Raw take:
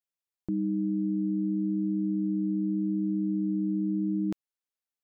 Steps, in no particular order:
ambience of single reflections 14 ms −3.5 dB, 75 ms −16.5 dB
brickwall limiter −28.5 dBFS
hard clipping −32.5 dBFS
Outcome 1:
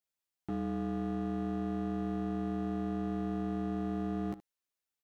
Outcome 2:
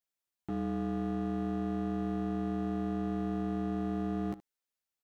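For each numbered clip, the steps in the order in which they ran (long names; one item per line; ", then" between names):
hard clipping, then ambience of single reflections, then brickwall limiter
hard clipping, then brickwall limiter, then ambience of single reflections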